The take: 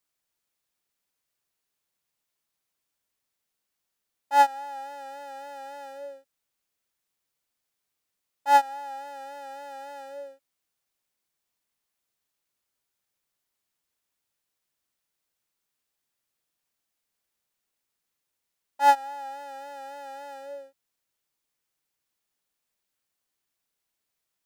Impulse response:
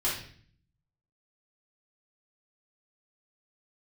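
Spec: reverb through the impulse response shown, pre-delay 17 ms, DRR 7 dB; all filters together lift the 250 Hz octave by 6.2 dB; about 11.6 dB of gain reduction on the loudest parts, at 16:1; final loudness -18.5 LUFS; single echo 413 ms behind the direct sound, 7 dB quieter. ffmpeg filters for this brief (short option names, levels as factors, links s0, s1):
-filter_complex "[0:a]equalizer=f=250:t=o:g=7,acompressor=threshold=0.0631:ratio=16,aecho=1:1:413:0.447,asplit=2[s0][s1];[1:a]atrim=start_sample=2205,adelay=17[s2];[s1][s2]afir=irnorm=-1:irlink=0,volume=0.168[s3];[s0][s3]amix=inputs=2:normalize=0,volume=7.5"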